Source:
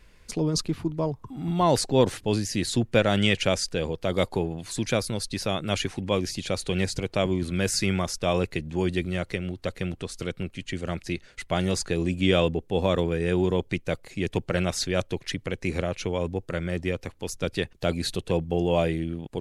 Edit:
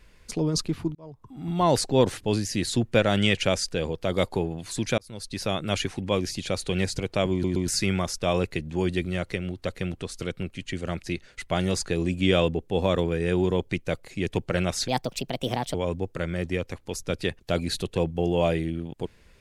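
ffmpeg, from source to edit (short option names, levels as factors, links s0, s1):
-filter_complex "[0:a]asplit=8[s0][s1][s2][s3][s4][s5][s6][s7];[s0]atrim=end=0.95,asetpts=PTS-STARTPTS,afade=t=out:st=0.946:d=0.004:c=hsin[s8];[s1]atrim=start=0.95:end=4.98,asetpts=PTS-STARTPTS,afade=t=in:d=0.7,afade=t=out:st=4.026:d=0.004:c=hsin[s9];[s2]atrim=start=4.98:end=7.442,asetpts=PTS-STARTPTS,afade=t=in:d=0.49[s10];[s3]atrim=start=7.318:end=7.442[s11];[s4]atrim=start=7.318:end=7.442[s12];[s5]atrim=start=7.678:end=14.884[s13];[s6]atrim=start=14.88:end=16.08,asetpts=PTS-STARTPTS,asetrate=61299,aresample=44100[s14];[s7]atrim=start=16.076[s15];[s8][s9][s10]concat=n=3:v=0:a=1[s16];[s16][s11]acrossfade=d=0.004:c1=hsin:c2=hsin[s17];[s17][s12]acrossfade=d=0.004:c1=hsin:c2=hsin[s18];[s18][s13]acrossfade=d=0.004:c1=hsin:c2=hsin[s19];[s19][s14]acrossfade=d=0.004:c1=hsin:c2=hsin[s20];[s20][s15]acrossfade=d=0.004:c1=hsin:c2=hsin"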